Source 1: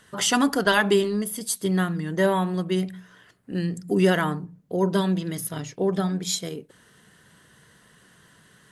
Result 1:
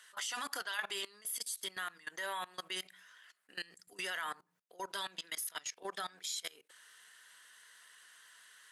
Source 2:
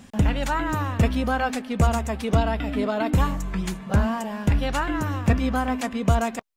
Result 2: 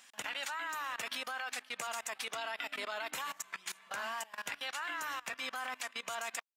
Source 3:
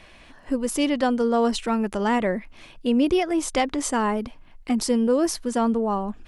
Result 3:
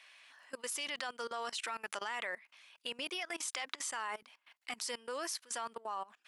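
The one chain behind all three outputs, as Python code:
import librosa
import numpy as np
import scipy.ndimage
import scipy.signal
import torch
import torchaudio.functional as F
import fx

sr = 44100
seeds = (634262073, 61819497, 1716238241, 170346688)

y = scipy.signal.sosfilt(scipy.signal.butter(2, 1400.0, 'highpass', fs=sr, output='sos'), x)
y = fx.level_steps(y, sr, step_db=21)
y = y * librosa.db_to_amplitude(3.0)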